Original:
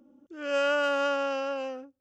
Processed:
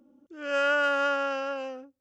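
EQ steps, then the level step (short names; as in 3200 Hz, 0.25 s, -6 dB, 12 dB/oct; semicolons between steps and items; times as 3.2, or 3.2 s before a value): dynamic EQ 1600 Hz, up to +7 dB, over -43 dBFS, Q 1.8; -1.5 dB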